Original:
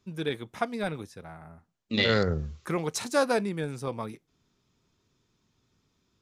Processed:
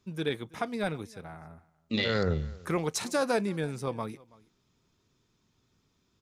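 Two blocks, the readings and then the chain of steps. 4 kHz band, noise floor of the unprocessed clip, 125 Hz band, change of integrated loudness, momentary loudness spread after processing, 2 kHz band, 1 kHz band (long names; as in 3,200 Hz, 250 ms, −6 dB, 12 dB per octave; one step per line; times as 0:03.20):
−3.5 dB, −75 dBFS, −1.0 dB, −2.5 dB, 16 LU, −3.0 dB, −2.5 dB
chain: brickwall limiter −17 dBFS, peak gain reduction 5.5 dB
single-tap delay 328 ms −23.5 dB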